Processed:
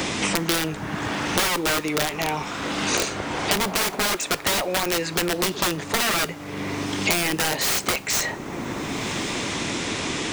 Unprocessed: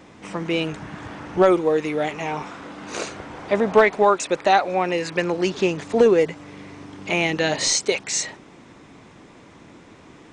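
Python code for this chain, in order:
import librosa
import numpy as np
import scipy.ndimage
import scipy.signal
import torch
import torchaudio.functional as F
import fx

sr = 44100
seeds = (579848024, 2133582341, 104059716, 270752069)

y = (np.mod(10.0 ** (16.5 / 20.0) * x + 1.0, 2.0) - 1.0) / 10.0 ** (16.5 / 20.0)
y = fx.rev_double_slope(y, sr, seeds[0], early_s=0.27, late_s=2.3, knee_db=-21, drr_db=15.5)
y = fx.band_squash(y, sr, depth_pct=100)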